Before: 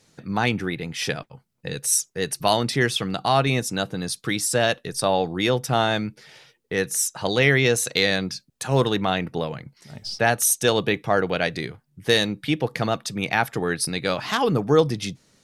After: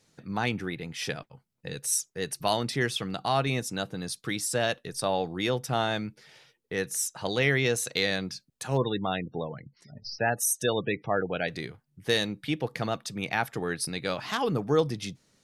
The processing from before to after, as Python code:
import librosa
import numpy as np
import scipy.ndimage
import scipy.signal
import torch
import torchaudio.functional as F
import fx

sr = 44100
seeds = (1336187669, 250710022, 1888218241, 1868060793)

y = fx.spec_gate(x, sr, threshold_db=-20, keep='strong', at=(8.76, 11.47), fade=0.02)
y = y * librosa.db_to_amplitude(-6.5)